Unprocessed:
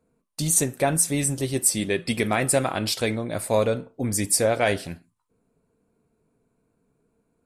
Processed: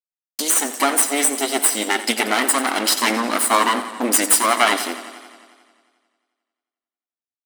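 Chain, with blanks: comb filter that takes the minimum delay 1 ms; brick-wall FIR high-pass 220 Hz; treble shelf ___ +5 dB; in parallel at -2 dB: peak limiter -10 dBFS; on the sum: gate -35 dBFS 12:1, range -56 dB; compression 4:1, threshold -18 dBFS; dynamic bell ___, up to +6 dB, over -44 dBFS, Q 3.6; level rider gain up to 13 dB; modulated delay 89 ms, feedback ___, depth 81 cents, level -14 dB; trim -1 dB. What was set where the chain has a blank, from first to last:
4.1 kHz, 1.5 kHz, 71%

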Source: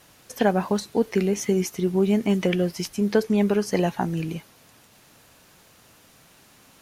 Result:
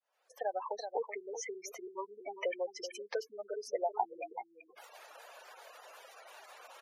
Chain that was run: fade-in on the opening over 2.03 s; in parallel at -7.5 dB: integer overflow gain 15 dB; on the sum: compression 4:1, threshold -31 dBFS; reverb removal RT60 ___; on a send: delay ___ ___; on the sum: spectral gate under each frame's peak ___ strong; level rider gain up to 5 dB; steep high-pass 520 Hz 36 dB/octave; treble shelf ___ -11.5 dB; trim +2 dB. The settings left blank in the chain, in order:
0.83 s, 380 ms, -9.5 dB, -15 dB, 2.3 kHz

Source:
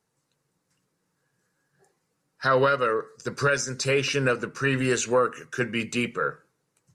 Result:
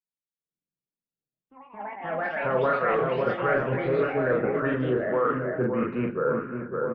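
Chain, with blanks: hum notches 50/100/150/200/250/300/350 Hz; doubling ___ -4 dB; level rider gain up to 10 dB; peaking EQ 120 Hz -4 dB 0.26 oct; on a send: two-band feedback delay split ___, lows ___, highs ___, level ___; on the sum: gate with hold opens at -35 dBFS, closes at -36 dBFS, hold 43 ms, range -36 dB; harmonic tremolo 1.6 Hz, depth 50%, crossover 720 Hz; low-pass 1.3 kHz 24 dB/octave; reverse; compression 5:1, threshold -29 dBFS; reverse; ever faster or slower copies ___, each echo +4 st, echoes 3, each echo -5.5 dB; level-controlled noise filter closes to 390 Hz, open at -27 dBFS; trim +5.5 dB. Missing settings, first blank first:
40 ms, 1.9 kHz, 564 ms, 135 ms, -12 dB, 97 ms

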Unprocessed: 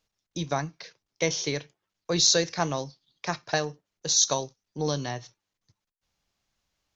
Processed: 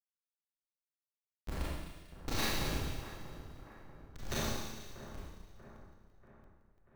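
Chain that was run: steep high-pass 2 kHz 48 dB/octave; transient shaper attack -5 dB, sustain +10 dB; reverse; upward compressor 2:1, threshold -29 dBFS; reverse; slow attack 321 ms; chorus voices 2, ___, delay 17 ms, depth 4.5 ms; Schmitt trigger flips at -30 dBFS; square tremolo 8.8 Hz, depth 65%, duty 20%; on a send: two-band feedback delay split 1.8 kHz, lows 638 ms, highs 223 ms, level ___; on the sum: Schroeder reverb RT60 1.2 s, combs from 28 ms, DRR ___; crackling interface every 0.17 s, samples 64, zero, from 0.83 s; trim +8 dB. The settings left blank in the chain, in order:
0.4 Hz, -12.5 dB, -8 dB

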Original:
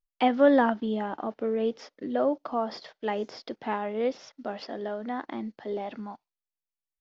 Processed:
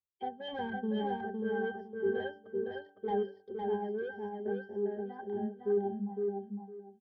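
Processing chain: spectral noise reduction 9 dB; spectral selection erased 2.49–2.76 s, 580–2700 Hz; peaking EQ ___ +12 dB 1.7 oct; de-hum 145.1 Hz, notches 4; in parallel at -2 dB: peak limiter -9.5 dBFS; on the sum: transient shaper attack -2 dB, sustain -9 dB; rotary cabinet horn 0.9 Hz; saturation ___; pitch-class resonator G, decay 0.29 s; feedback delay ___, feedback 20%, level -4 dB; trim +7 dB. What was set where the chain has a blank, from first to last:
580 Hz, -20 dBFS, 509 ms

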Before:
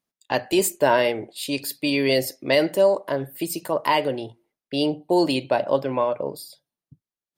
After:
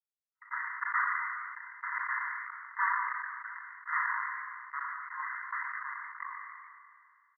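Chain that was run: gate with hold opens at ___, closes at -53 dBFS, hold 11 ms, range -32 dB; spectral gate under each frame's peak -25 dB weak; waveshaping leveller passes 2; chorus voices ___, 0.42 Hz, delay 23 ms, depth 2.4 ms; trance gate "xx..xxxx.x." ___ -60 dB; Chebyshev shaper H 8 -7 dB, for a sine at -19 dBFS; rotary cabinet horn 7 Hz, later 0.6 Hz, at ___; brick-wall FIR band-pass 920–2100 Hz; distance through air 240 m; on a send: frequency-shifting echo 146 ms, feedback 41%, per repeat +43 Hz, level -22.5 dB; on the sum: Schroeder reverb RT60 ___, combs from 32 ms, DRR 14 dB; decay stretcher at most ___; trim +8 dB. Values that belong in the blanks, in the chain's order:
-51 dBFS, 6, 144 bpm, 3.87 s, 1.5 s, 28 dB/s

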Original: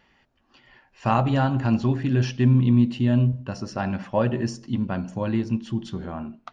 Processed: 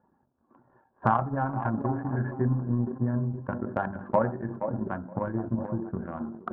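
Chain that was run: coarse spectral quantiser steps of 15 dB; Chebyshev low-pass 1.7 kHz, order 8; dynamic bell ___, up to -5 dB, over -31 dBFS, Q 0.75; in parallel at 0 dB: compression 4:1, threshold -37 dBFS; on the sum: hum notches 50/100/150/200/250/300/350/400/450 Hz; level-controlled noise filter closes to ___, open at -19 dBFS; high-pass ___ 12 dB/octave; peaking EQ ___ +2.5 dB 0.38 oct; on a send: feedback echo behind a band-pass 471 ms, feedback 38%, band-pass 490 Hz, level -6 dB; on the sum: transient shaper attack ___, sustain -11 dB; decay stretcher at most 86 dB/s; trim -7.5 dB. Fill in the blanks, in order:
230 Hz, 840 Hz, 96 Hz, 1 kHz, +10 dB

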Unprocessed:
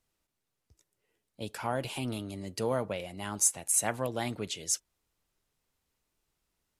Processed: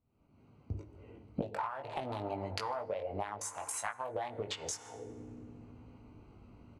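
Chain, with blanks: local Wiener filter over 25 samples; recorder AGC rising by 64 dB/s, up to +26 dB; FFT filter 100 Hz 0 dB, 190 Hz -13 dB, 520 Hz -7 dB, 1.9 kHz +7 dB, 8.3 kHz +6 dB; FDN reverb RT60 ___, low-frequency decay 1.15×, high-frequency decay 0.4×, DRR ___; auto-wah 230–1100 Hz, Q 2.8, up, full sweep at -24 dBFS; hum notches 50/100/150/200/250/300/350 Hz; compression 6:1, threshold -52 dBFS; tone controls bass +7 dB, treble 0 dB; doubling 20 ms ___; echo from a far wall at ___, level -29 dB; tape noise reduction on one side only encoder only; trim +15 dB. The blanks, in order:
3.3 s, 15 dB, -5 dB, 26 m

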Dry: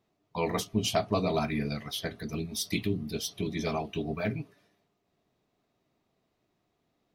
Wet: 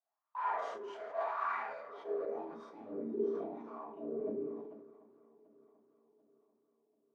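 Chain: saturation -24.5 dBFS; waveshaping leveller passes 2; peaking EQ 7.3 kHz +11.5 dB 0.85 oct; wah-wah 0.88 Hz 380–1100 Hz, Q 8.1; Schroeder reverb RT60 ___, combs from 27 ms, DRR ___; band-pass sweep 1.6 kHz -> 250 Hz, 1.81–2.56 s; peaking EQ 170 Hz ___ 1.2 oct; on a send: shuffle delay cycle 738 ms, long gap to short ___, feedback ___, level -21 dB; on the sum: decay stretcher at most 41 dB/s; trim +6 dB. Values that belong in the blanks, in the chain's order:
0.45 s, -7.5 dB, -8 dB, 1.5:1, 47%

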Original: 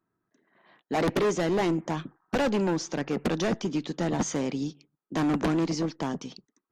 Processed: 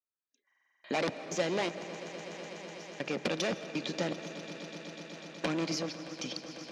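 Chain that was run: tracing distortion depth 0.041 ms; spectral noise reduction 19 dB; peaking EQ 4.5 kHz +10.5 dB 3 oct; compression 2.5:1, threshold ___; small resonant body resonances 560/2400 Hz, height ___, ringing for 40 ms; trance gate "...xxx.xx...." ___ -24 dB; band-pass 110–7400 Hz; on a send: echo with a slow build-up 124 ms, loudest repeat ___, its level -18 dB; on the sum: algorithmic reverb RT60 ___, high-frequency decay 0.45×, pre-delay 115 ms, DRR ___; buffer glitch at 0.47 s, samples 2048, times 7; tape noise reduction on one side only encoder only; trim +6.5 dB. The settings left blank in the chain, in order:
-46 dBFS, 10 dB, 80 bpm, 5, 1.2 s, 14 dB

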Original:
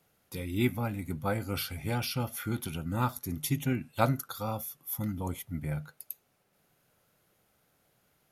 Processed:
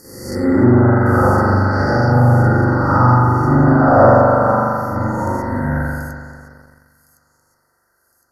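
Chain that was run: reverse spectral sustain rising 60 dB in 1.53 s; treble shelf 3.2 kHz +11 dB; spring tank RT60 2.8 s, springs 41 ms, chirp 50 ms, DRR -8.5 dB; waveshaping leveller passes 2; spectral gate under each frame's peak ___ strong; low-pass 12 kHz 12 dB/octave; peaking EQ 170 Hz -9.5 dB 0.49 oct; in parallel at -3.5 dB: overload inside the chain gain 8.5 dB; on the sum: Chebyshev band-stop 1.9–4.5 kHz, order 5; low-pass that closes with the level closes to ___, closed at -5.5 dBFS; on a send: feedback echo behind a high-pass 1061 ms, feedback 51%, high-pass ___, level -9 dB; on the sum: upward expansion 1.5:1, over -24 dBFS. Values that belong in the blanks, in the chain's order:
-40 dB, 1.1 kHz, 4.9 kHz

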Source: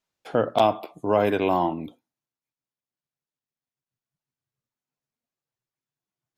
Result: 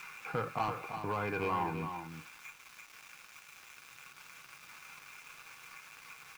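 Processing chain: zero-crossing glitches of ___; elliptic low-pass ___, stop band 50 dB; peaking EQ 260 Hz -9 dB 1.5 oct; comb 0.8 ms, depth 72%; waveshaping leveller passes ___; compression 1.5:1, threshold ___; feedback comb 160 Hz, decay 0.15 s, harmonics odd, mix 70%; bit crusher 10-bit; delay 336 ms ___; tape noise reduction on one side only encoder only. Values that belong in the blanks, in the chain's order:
-23 dBFS, 2.4 kHz, 2, -35 dBFS, -8 dB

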